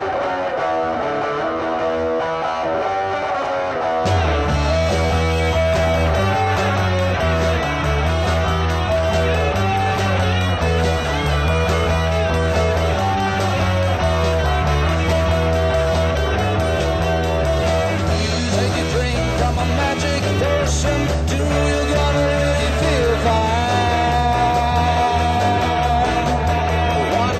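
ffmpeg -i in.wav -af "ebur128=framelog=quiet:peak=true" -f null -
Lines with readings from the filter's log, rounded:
Integrated loudness:
  I:         -18.2 LUFS
  Threshold: -28.2 LUFS
Loudness range:
  LRA:         2.1 LU
  Threshold: -38.1 LUFS
  LRA low:   -19.1 LUFS
  LRA high:  -17.0 LUFS
True peak:
  Peak:       -5.6 dBFS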